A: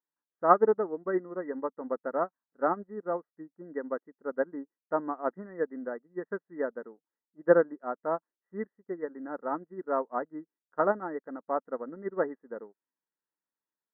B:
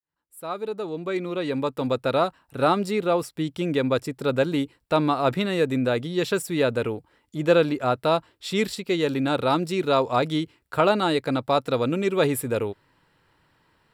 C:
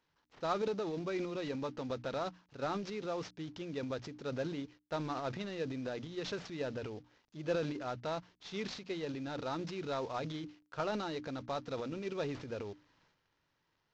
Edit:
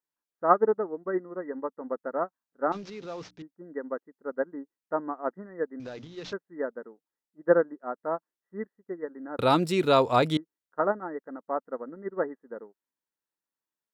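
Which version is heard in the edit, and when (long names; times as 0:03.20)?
A
0:02.72–0:03.42: punch in from C
0:05.80–0:06.33: punch in from C
0:09.39–0:10.37: punch in from B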